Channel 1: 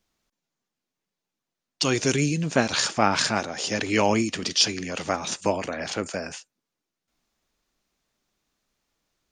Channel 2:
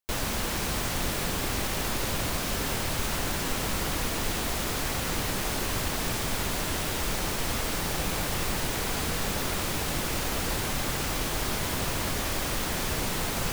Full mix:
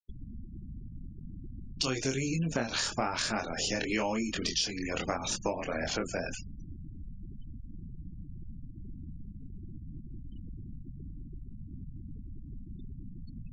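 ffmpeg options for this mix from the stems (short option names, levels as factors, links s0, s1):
-filter_complex "[0:a]flanger=delay=22.5:depth=2.9:speed=0.94,volume=1.33[s0];[1:a]acrossover=split=310|2300[s1][s2][s3];[s1]acompressor=threshold=0.0178:ratio=4[s4];[s2]acompressor=threshold=0.00141:ratio=4[s5];[s3]acompressor=threshold=0.0141:ratio=4[s6];[s4][s5][s6]amix=inputs=3:normalize=0,volume=0.596[s7];[s0][s7]amix=inputs=2:normalize=0,afftfilt=real='re*gte(hypot(re,im),0.02)':imag='im*gte(hypot(re,im),0.02)':win_size=1024:overlap=0.75,acompressor=threshold=0.0398:ratio=6"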